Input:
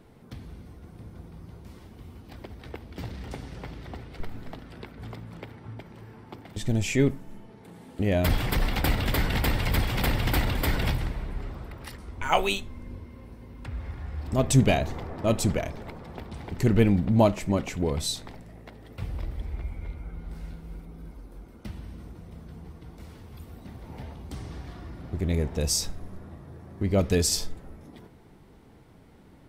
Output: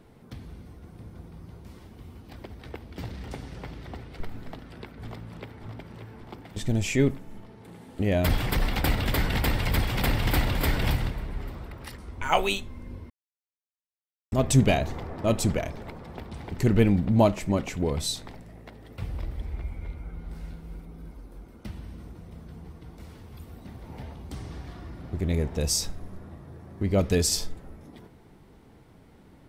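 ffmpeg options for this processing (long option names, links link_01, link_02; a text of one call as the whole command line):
ffmpeg -i in.wav -filter_complex "[0:a]asplit=2[link_01][link_02];[link_02]afade=type=in:start_time=4.45:duration=0.01,afade=type=out:start_time=5.59:duration=0.01,aecho=0:1:580|1160|1740|2320|2900|3480|4060|4640|5220|5800|6380|6960:0.375837|0.281878|0.211409|0.158556|0.118917|0.089188|0.066891|0.0501682|0.0376262|0.0282196|0.0211647|0.0158735[link_03];[link_01][link_03]amix=inputs=2:normalize=0,asplit=2[link_04][link_05];[link_05]afade=type=in:start_time=9.47:duration=0.01,afade=type=out:start_time=10.53:duration=0.01,aecho=0:1:570|1140:0.334965|0.0502448[link_06];[link_04][link_06]amix=inputs=2:normalize=0,asplit=3[link_07][link_08][link_09];[link_07]atrim=end=13.1,asetpts=PTS-STARTPTS,afade=type=out:start_time=13.096:duration=0.004:curve=hsin[link_10];[link_08]atrim=start=13.1:end=14.32,asetpts=PTS-STARTPTS,volume=0[link_11];[link_09]atrim=start=14.32,asetpts=PTS-STARTPTS,afade=type=in:duration=0.004:curve=hsin[link_12];[link_10][link_11][link_12]concat=n=3:v=0:a=1" out.wav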